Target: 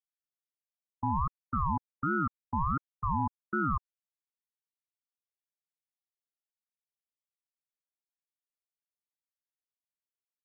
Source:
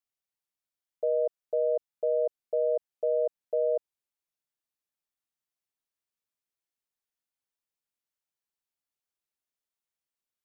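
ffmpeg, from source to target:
-af "afwtdn=0.00794,aeval=exprs='val(0)*sin(2*PI*600*n/s+600*0.4/1.4*sin(2*PI*1.4*n/s))':c=same"

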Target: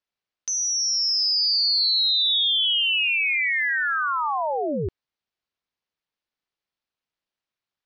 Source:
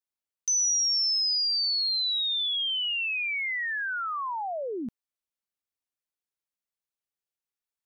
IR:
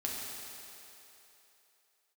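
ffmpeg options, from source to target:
-af "lowpass=f=5k:w=0.5412,lowpass=f=5k:w=1.3066,acontrast=71,aeval=exprs='val(0)*sin(2*PI*150*n/s)':c=same,volume=3.5dB"

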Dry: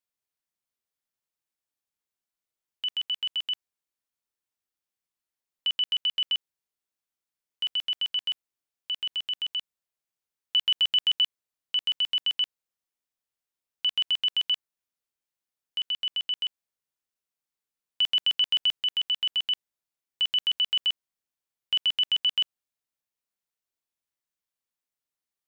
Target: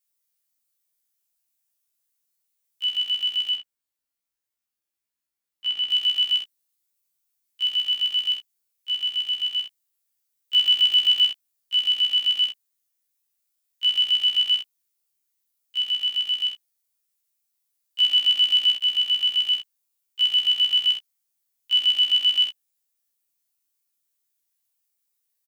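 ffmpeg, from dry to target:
-filter_complex "[0:a]asettb=1/sr,asplit=3[a][b][c];[a]atrim=end=3.534[d];[b]atrim=start=3.53:end=5.89,asetpts=PTS-STARTPTS,afade=t=in:d=0.004:c=qsin,afade=t=out:st=2.356:d=0.004:c=qsin,highshelf=f=4.1k:g=-11[e];[c]atrim=start=5.886[f];[d][e]acrossfade=d=0.004:c1=hsin:c2=qsin[g];[g][f]acrossfade=d=0.004:c1=qsin:c2=hsin,acrossover=split=960[h][i];[i]crystalizer=i=3:c=0[j];[h][j]amix=inputs=2:normalize=0,aecho=1:1:46|65:0.668|0.473,afftfilt=real='re*1.73*eq(mod(b,3),0)':imag='im*1.73*eq(mod(b,3),0)':win_size=2048:overlap=0.75"

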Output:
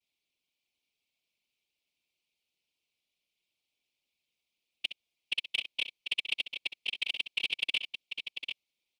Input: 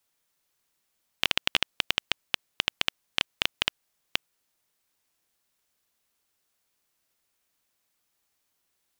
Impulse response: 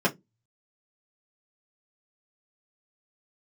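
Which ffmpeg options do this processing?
-filter_complex "[0:a]areverse,asplit=2[a][b];[b]highpass=f=720:p=1,volume=7dB,asoftclip=type=tanh:threshold=-2.5dB[c];[a][c]amix=inputs=2:normalize=0,lowpass=f=2.8k:p=1,volume=-6dB,afftfilt=real='hypot(re,im)*cos(2*PI*random(0))':imag='hypot(re,im)*sin(2*PI*random(1))':win_size=512:overlap=0.75,firequalizer=gain_entry='entry(270,0);entry(1600,-24);entry(2300,5);entry(3800,3);entry(6500,-4)':delay=0.05:min_phase=1,asplit=2[d][e];[e]aecho=0:1:65|743:0.237|0.398[f];[d][f]amix=inputs=2:normalize=0,asoftclip=type=tanh:threshold=-17dB"

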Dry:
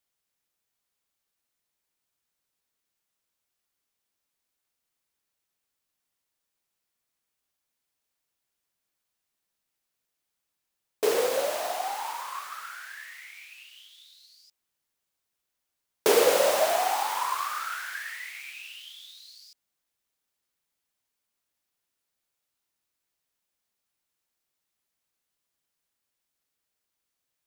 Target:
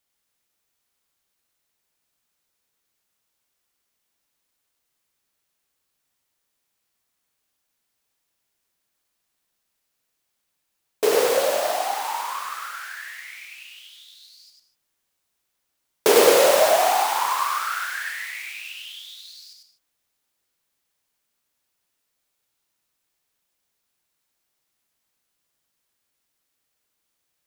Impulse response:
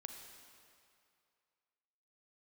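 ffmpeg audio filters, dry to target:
-filter_complex "[0:a]asplit=2[a][b];[1:a]atrim=start_sample=2205,afade=t=out:st=0.21:d=0.01,atrim=end_sample=9702,adelay=98[c];[b][c]afir=irnorm=-1:irlink=0,volume=2dB[d];[a][d]amix=inputs=2:normalize=0,volume=4.5dB"

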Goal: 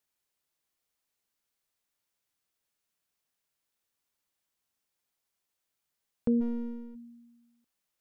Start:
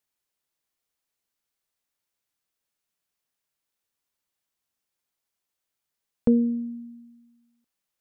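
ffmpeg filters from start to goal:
-filter_complex "[0:a]asplit=3[a][b][c];[a]afade=t=out:st=6.4:d=0.02[d];[b]aeval=exprs='if(lt(val(0),0),0.251*val(0),val(0))':c=same,afade=t=in:st=6.4:d=0.02,afade=t=out:st=6.94:d=0.02[e];[c]afade=t=in:st=6.94:d=0.02[f];[d][e][f]amix=inputs=3:normalize=0,alimiter=limit=-19dB:level=0:latency=1:release=403"

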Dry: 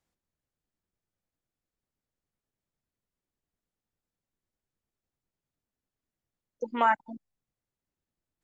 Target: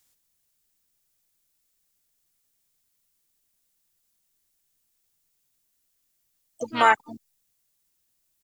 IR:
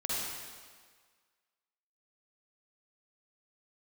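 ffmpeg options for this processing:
-filter_complex "[0:a]crystalizer=i=8.5:c=0,asplit=3[a][b][c];[b]asetrate=22050,aresample=44100,atempo=2,volume=-13dB[d];[c]asetrate=58866,aresample=44100,atempo=0.749154,volume=-9dB[e];[a][d][e]amix=inputs=3:normalize=0"

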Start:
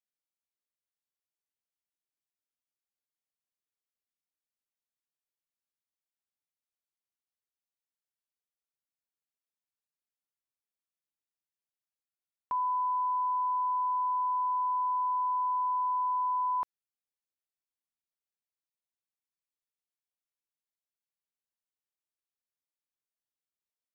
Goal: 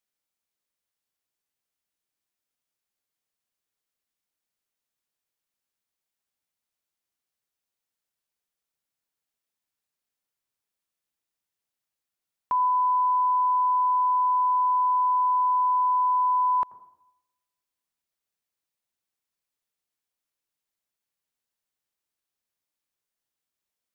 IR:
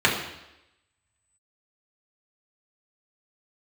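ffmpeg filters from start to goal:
-filter_complex "[0:a]asplit=2[a][b];[b]lowpass=1k[c];[1:a]atrim=start_sample=2205,adelay=82[d];[c][d]afir=irnorm=-1:irlink=0,volume=-31.5dB[e];[a][e]amix=inputs=2:normalize=0,volume=7dB"

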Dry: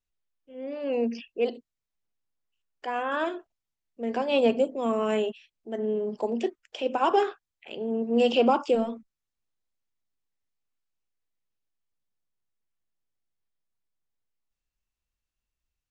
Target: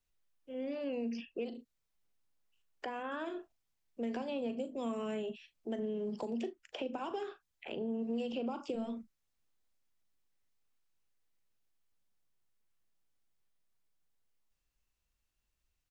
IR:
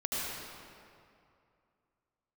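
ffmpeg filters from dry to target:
-filter_complex "[0:a]acompressor=threshold=-31dB:ratio=2.5,asplit=2[a][b];[b]adelay=39,volume=-13dB[c];[a][c]amix=inputs=2:normalize=0,acrossover=split=240|2200[d][e][f];[d]acompressor=threshold=-42dB:ratio=4[g];[e]acompressor=threshold=-44dB:ratio=4[h];[f]acompressor=threshold=-58dB:ratio=4[i];[g][h][i]amix=inputs=3:normalize=0,volume=3dB"

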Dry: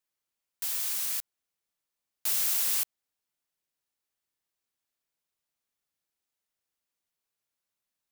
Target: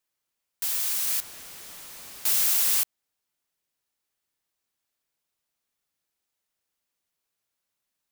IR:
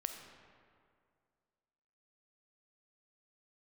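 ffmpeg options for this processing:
-filter_complex "[0:a]asettb=1/sr,asplit=3[a][b][c];[a]atrim=end=1.074[d];[b]atrim=start=1.07:end=2.81,asetpts=PTS-STARTPTS,afade=t=in:d=0.004:c=qsin,afade=t=out:st=1.736:d=0.004:c=qsin,aeval=exprs='val(0)+0.5*0.01*sgn(val(0))':c=same[e];[c]atrim=start=2.806[f];[d][e]acrossfade=d=0.004:c1=hsin:c2=qsin[g];[g][f]acrossfade=d=0.004:c1=qsin:c2=hsin,volume=4dB"

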